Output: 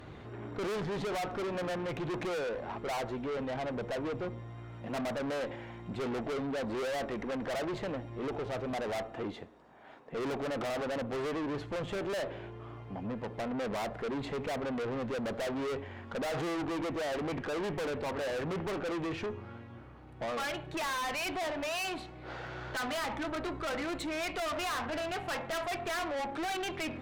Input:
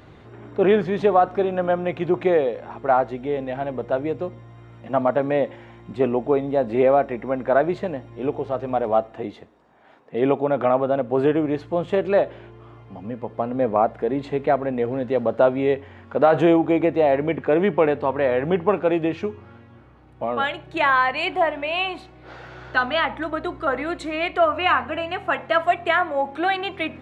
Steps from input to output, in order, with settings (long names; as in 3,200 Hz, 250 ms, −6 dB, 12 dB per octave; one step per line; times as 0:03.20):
tube saturation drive 33 dB, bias 0.35